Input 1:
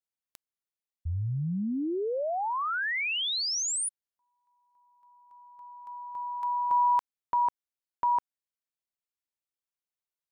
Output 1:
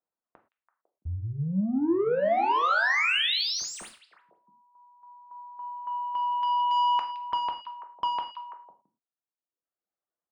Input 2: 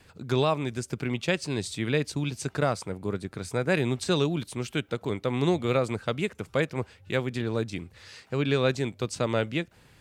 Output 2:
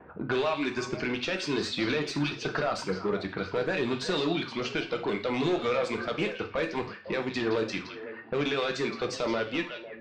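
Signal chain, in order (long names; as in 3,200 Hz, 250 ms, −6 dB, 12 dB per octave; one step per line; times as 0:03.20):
high-pass filter 410 Hz 6 dB per octave
low-pass that shuts in the quiet parts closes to 1,200 Hz, open at −28.5 dBFS
reverb reduction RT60 1.4 s
low-pass that shuts in the quiet parts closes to 1,400 Hz, open at −30 dBFS
high-shelf EQ 4,400 Hz +7.5 dB
in parallel at −3 dB: downward compressor, threshold −37 dBFS
on the sum: brickwall limiter −20.5 dBFS
soft clipping −31 dBFS
high-frequency loss of the air 190 metres
on a send: echo through a band-pass that steps 167 ms, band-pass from 3,600 Hz, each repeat −1.4 octaves, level −6 dB
on the sum: reverb whose tail is shaped and stops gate 140 ms falling, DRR 4 dB
level +8.5 dB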